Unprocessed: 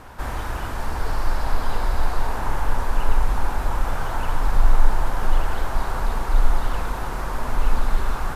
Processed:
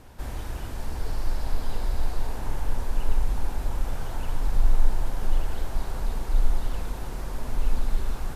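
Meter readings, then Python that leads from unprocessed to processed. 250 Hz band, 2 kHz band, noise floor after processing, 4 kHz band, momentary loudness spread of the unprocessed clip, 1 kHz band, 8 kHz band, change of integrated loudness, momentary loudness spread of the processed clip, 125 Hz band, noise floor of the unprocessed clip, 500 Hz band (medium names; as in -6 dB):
-5.0 dB, -11.5 dB, -35 dBFS, -6.0 dB, 6 LU, -12.5 dB, no reading, -5.5 dB, 7 LU, -4.0 dB, -29 dBFS, -7.5 dB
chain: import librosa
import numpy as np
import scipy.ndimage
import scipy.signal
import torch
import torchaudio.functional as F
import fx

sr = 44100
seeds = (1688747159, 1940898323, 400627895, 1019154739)

y = fx.peak_eq(x, sr, hz=1200.0, db=-10.5, octaves=1.7)
y = y * 10.0 ** (-4.0 / 20.0)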